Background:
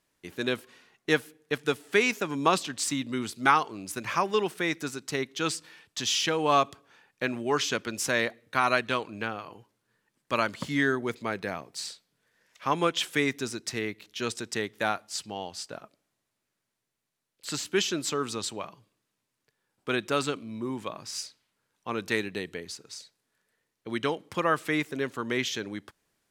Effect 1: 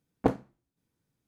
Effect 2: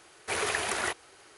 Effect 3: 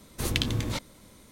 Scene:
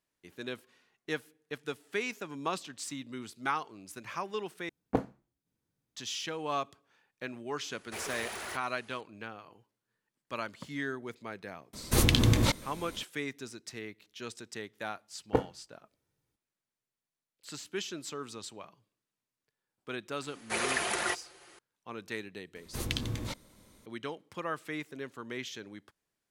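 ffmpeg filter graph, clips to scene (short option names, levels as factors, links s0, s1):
-filter_complex "[1:a]asplit=2[s0][s1];[2:a]asplit=2[s2][s3];[3:a]asplit=2[s4][s5];[0:a]volume=0.299[s6];[s2]volume=37.6,asoftclip=hard,volume=0.0266[s7];[s4]alimiter=level_in=3.55:limit=0.891:release=50:level=0:latency=1[s8];[s1]aecho=1:1:2.2:0.47[s9];[s3]aecho=1:1:5.7:0.51[s10];[s6]asplit=2[s11][s12];[s11]atrim=end=4.694[s13];[s0]atrim=end=1.27,asetpts=PTS-STARTPTS,volume=0.631[s14];[s12]atrim=start=5.956[s15];[s7]atrim=end=1.37,asetpts=PTS-STARTPTS,volume=0.501,afade=t=in:d=0.004:c=hsin,afade=t=out:st=1.366:d=0.004:c=hsin,adelay=7640[s16];[s8]atrim=end=1.31,asetpts=PTS-STARTPTS,volume=0.531,afade=t=in:d=0.004:c=hsin,afade=t=out:st=1.306:d=0.004:c=hsin,adelay=11730[s17];[s9]atrim=end=1.27,asetpts=PTS-STARTPTS,volume=0.75,afade=t=in:d=0.004:c=hsin,afade=t=out:st=1.266:d=0.004:c=hsin,adelay=15090[s18];[s10]atrim=end=1.37,asetpts=PTS-STARTPTS,volume=0.794,afade=t=in:d=0.004:c=hsin,afade=t=out:st=1.366:d=0.004:c=hsin,adelay=20220[s19];[s5]atrim=end=1.31,asetpts=PTS-STARTPTS,volume=0.473,afade=t=in:d=0.004:c=hsin,afade=t=out:st=1.306:d=0.004:c=hsin,adelay=22550[s20];[s13][s14]acrossfade=d=0.004:c1=hsin:c2=hsin[s21];[s21][s15]acrossfade=d=0.004:c1=hsin:c2=hsin[s22];[s22][s16][s17][s18][s19][s20]amix=inputs=6:normalize=0"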